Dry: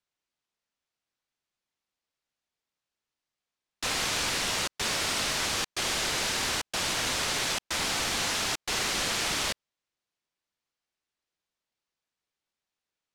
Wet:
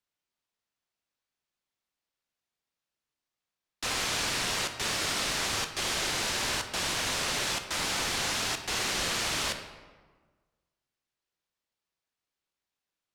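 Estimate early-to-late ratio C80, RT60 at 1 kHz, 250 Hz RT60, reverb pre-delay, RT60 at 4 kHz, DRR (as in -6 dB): 10.0 dB, 1.4 s, 1.7 s, 12 ms, 0.90 s, 6.0 dB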